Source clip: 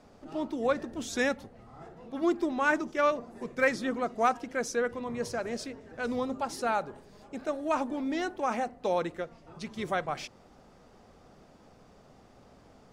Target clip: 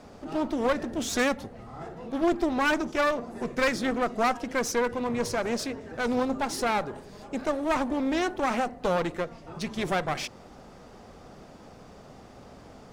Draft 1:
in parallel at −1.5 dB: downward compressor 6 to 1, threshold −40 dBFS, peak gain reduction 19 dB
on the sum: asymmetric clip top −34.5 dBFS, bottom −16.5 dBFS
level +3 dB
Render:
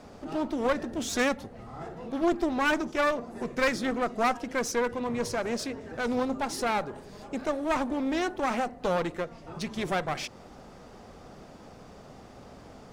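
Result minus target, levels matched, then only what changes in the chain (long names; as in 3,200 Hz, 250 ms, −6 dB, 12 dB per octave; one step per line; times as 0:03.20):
downward compressor: peak gain reduction +8 dB
change: downward compressor 6 to 1, threshold −30.5 dBFS, peak gain reduction 11 dB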